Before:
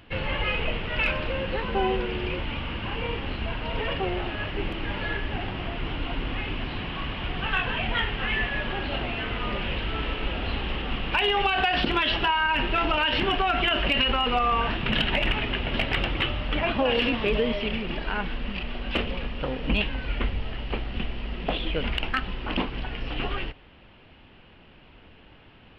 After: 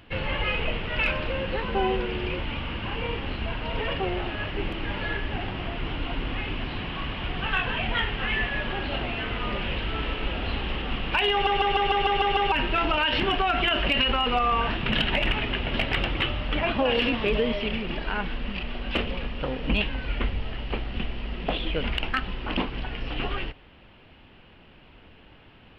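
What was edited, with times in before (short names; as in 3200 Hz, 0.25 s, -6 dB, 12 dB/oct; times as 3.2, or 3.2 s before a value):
11.32 stutter in place 0.15 s, 8 plays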